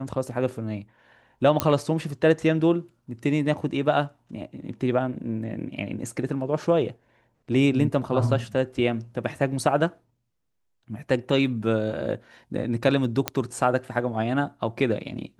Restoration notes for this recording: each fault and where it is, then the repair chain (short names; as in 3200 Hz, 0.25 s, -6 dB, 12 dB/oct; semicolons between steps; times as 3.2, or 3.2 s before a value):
1.6 pop -5 dBFS
13.28 pop -7 dBFS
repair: de-click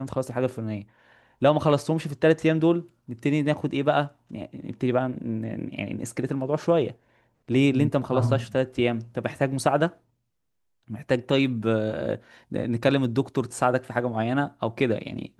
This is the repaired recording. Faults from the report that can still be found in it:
none